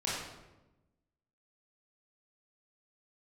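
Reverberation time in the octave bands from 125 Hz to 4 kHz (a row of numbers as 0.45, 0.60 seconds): 1.4, 1.4, 1.1, 0.95, 0.85, 0.70 seconds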